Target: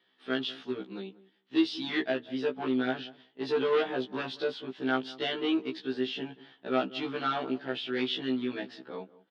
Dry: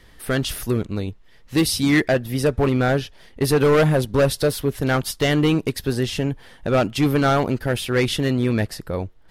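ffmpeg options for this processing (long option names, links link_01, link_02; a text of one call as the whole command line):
ffmpeg -i in.wav -filter_complex "[0:a]asplit=2[link_01][link_02];[link_02]adelay=188,lowpass=frequency=1000:poles=1,volume=-18dB,asplit=2[link_03][link_04];[link_04]adelay=188,lowpass=frequency=1000:poles=1,volume=0.22[link_05];[link_01][link_03][link_05]amix=inputs=3:normalize=0,agate=range=-7dB:threshold=-41dB:ratio=16:detection=peak,highpass=frequency=240:width=0.5412,highpass=frequency=240:width=1.3066,equalizer=frequency=540:width_type=q:width=4:gain=-10,equalizer=frequency=1100:width_type=q:width=4:gain=-3,equalizer=frequency=2100:width_type=q:width=4:gain=-5,equalizer=frequency=3300:width_type=q:width=4:gain=6,lowpass=frequency=3900:width=0.5412,lowpass=frequency=3900:width=1.3066,afftfilt=real='re*1.73*eq(mod(b,3),0)':imag='im*1.73*eq(mod(b,3),0)':win_size=2048:overlap=0.75,volume=-6dB" out.wav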